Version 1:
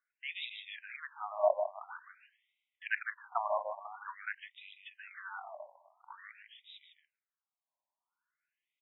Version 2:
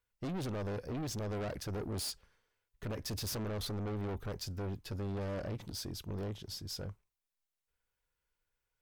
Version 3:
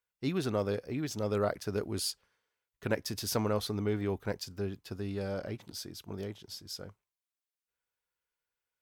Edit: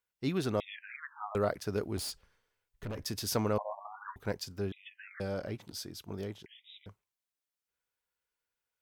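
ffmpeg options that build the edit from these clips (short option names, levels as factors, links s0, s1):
-filter_complex "[0:a]asplit=4[s0][s1][s2][s3];[2:a]asplit=6[s4][s5][s6][s7][s8][s9];[s4]atrim=end=0.602[s10];[s0]atrim=start=0.598:end=1.352[s11];[s5]atrim=start=1.348:end=1.972[s12];[1:a]atrim=start=1.968:end=3.042[s13];[s6]atrim=start=3.038:end=3.582[s14];[s1]atrim=start=3.578:end=4.162[s15];[s7]atrim=start=4.158:end=4.722[s16];[s2]atrim=start=4.718:end=5.202[s17];[s8]atrim=start=5.198:end=6.462[s18];[s3]atrim=start=6.458:end=6.862[s19];[s9]atrim=start=6.858[s20];[s10][s11]acrossfade=d=0.004:c1=hsin:c2=hsin[s21];[s21][s12]acrossfade=d=0.004:c1=hsin:c2=hsin[s22];[s22][s13]acrossfade=d=0.004:c1=hsin:c2=hsin[s23];[s23][s14]acrossfade=d=0.004:c1=hsin:c2=hsin[s24];[s24][s15]acrossfade=d=0.004:c1=hsin:c2=hsin[s25];[s25][s16]acrossfade=d=0.004:c1=hsin:c2=hsin[s26];[s26][s17]acrossfade=d=0.004:c1=hsin:c2=hsin[s27];[s27][s18]acrossfade=d=0.004:c1=hsin:c2=hsin[s28];[s28][s19]acrossfade=d=0.004:c1=hsin:c2=hsin[s29];[s29][s20]acrossfade=d=0.004:c1=hsin:c2=hsin"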